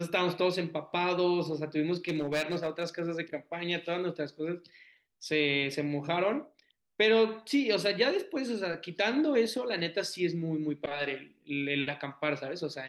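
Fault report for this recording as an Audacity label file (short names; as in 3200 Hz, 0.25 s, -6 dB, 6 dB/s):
1.940000	3.030000	clipped -25.5 dBFS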